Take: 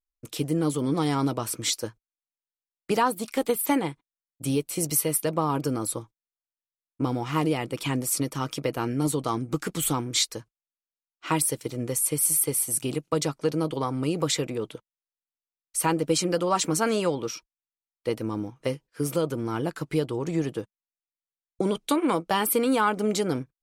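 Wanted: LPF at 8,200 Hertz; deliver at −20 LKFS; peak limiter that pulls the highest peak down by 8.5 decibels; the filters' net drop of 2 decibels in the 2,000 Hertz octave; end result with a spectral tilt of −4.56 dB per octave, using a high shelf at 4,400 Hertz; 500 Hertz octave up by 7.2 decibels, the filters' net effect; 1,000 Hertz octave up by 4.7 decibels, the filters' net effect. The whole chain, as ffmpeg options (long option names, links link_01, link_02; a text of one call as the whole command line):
ffmpeg -i in.wav -af "lowpass=8200,equalizer=frequency=500:width_type=o:gain=7.5,equalizer=frequency=1000:width_type=o:gain=4.5,equalizer=frequency=2000:width_type=o:gain=-6,highshelf=frequency=4400:gain=4.5,volume=5.5dB,alimiter=limit=-8.5dB:level=0:latency=1" out.wav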